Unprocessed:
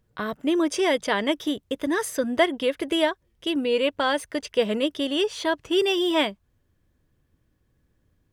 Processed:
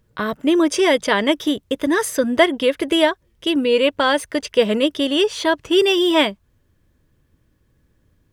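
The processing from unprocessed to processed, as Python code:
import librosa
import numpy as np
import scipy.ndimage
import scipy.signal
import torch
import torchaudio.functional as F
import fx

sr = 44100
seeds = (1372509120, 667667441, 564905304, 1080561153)

y = fx.notch(x, sr, hz=740.0, q=12.0)
y = y * 10.0 ** (6.5 / 20.0)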